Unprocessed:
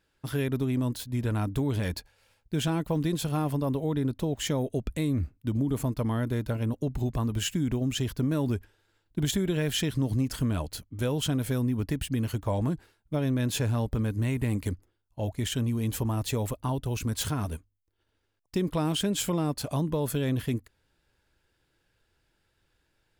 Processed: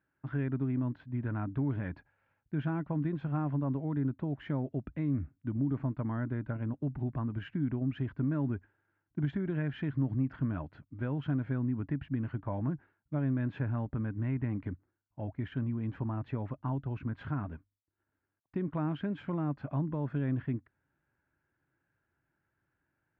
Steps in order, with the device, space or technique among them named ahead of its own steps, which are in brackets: bass cabinet (cabinet simulation 83–2000 Hz, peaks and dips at 140 Hz +5 dB, 280 Hz +4 dB, 470 Hz -8 dB, 1.5 kHz +4 dB); trim -6.5 dB

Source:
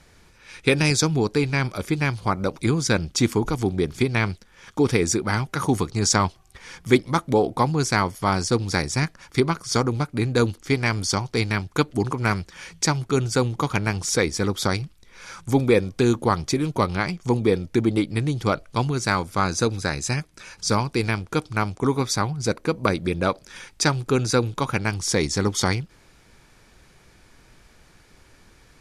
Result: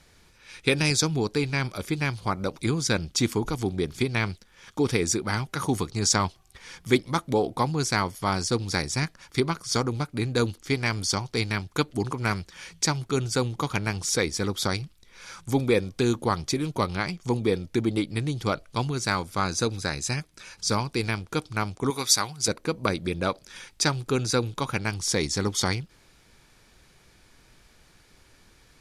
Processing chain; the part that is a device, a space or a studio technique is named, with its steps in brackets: presence and air boost (peaking EQ 3.8 kHz +3.5 dB 1.1 oct; treble shelf 9.7 kHz +6 dB); 21.90–22.48 s: tilt EQ +3 dB/octave; trim -4.5 dB

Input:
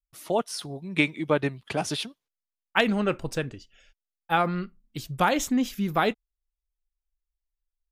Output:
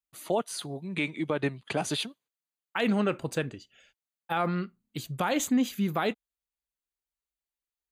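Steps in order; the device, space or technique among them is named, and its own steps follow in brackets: PA system with an anti-feedback notch (high-pass 110 Hz 12 dB/octave; Butterworth band-stop 5.4 kHz, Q 6.4; peak limiter -17 dBFS, peak gain reduction 11.5 dB); 0.87–1.82 s: low-pass 11 kHz 24 dB/octave

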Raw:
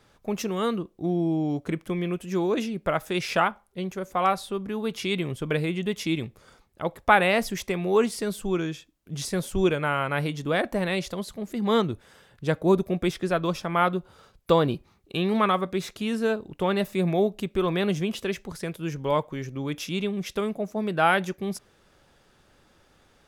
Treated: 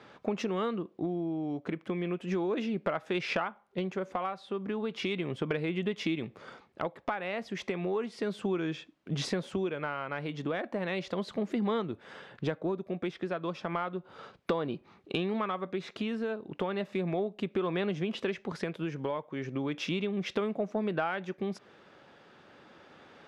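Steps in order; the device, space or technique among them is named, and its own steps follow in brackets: AM radio (band-pass 180–3200 Hz; compression 10:1, threshold -36 dBFS, peak gain reduction 23.5 dB; saturation -23 dBFS, distortion -30 dB; tremolo 0.34 Hz, depth 29%); trim +8.5 dB

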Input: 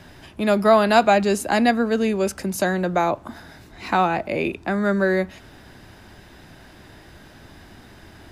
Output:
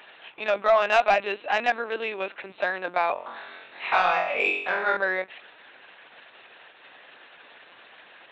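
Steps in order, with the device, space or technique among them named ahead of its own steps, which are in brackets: talking toy (LPC vocoder at 8 kHz pitch kept; high-pass 680 Hz 12 dB/octave; peaking EQ 2.6 kHz +6 dB 0.5 oct; saturation -10.5 dBFS, distortion -19 dB); 3.13–4.97 s: flutter echo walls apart 3.8 m, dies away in 0.61 s

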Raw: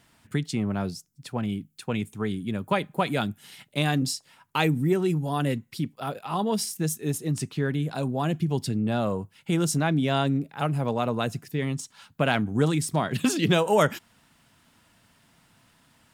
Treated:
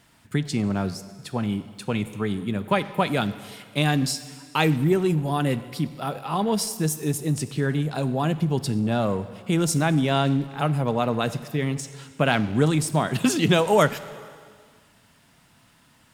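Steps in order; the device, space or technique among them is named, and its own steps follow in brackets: saturated reverb return (on a send at -9 dB: reverberation RT60 1.6 s, pre-delay 8 ms + saturation -27.5 dBFS, distortion -9 dB); on the sum: trim +2.5 dB

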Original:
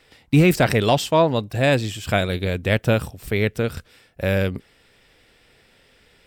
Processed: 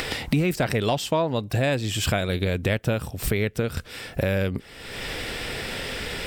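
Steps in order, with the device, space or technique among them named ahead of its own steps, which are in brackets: upward and downward compression (upward compressor, threshold -18 dBFS; compression 4:1, threshold -26 dBFS, peak gain reduction 13 dB); trim +4.5 dB

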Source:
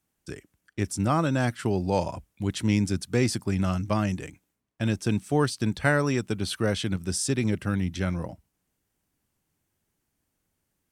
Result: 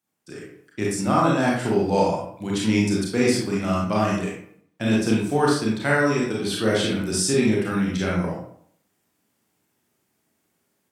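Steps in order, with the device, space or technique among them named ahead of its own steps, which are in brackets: far laptop microphone (reverberation RT60 0.60 s, pre-delay 27 ms, DRR -4.5 dB; high-pass 170 Hz 12 dB/octave; level rider gain up to 8 dB); trim -5 dB

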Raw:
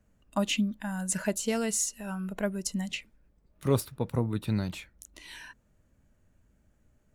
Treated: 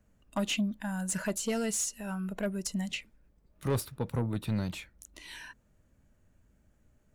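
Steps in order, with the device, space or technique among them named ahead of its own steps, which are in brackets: saturation between pre-emphasis and de-emphasis (treble shelf 11 kHz +10 dB; saturation -23 dBFS, distortion -13 dB; treble shelf 11 kHz -10 dB)

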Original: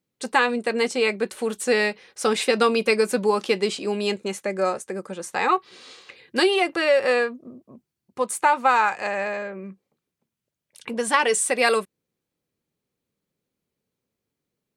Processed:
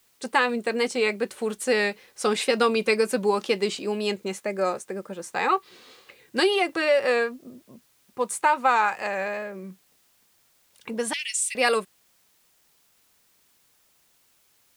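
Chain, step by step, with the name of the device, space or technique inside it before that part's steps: 11.13–11.55 s: steep high-pass 2.2 kHz 48 dB/octave; plain cassette with noise reduction switched in (tape noise reduction on one side only decoder only; wow and flutter; white noise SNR 37 dB); trim -2 dB

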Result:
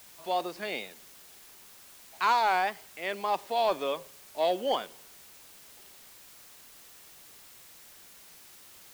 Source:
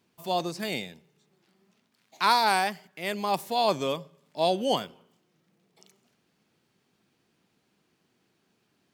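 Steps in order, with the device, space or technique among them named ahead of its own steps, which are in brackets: tape answering machine (band-pass 390–3200 Hz; saturation -16.5 dBFS, distortion -18 dB; wow and flutter; white noise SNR 19 dB)

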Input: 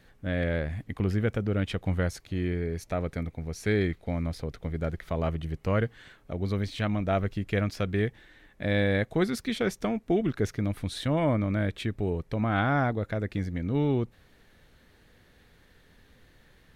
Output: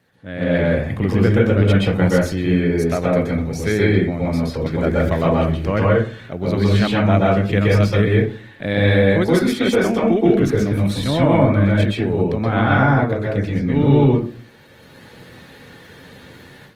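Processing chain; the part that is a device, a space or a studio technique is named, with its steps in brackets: far-field microphone of a smart speaker (reverberation RT60 0.45 s, pre-delay 120 ms, DRR -4 dB; high-pass 100 Hz 24 dB/octave; level rider gain up to 15 dB; trim -1.5 dB; Opus 20 kbps 48 kHz)

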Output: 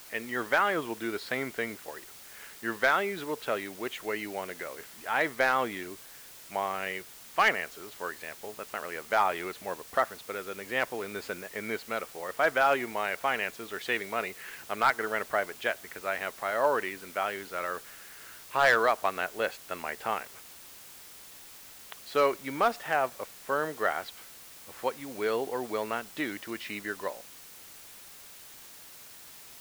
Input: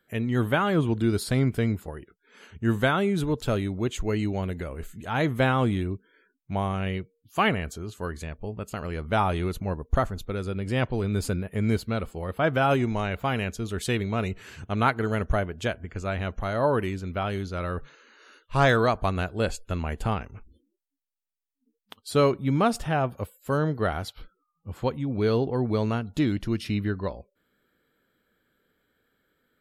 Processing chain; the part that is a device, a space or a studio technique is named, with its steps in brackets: drive-through speaker (band-pass 530–3200 Hz; peaking EQ 1.9 kHz +6 dB 0.5 oct; hard clipper -14.5 dBFS, distortion -18 dB; white noise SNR 17 dB)

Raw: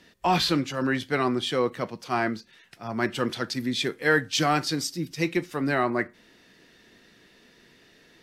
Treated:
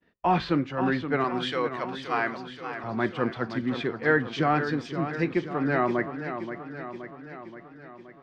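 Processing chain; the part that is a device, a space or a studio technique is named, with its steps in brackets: hearing-loss simulation (low-pass 1.9 kHz 12 dB/octave; expander -51 dBFS); 1.24–2.84 s: tilt EQ +4.5 dB/octave; modulated delay 525 ms, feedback 61%, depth 102 cents, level -9.5 dB

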